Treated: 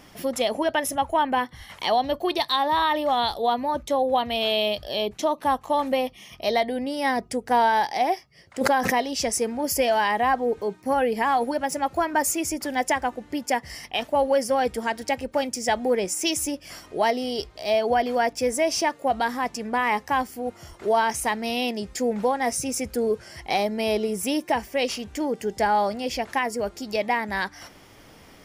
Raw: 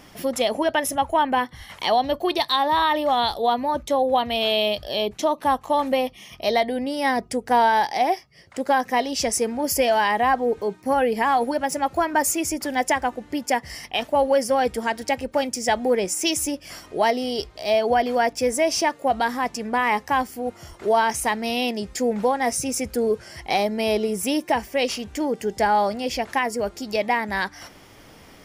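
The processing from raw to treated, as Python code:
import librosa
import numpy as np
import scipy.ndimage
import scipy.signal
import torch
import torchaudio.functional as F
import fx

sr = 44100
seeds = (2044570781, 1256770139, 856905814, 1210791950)

y = fx.pre_swell(x, sr, db_per_s=31.0, at=(8.61, 9.04))
y = y * 10.0 ** (-2.0 / 20.0)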